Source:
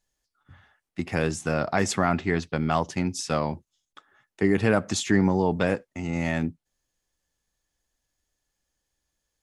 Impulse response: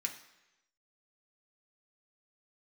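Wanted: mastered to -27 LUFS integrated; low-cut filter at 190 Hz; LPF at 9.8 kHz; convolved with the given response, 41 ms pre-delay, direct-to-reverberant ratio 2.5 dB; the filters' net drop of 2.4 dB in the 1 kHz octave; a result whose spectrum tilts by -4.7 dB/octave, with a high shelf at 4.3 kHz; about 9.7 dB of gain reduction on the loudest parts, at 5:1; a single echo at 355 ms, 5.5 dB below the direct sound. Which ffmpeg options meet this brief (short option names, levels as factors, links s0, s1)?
-filter_complex "[0:a]highpass=190,lowpass=9800,equalizer=f=1000:t=o:g=-3,highshelf=f=4300:g=-6.5,acompressor=threshold=0.0355:ratio=5,aecho=1:1:355:0.531,asplit=2[s0][s1];[1:a]atrim=start_sample=2205,adelay=41[s2];[s1][s2]afir=irnorm=-1:irlink=0,volume=0.708[s3];[s0][s3]amix=inputs=2:normalize=0,volume=1.88"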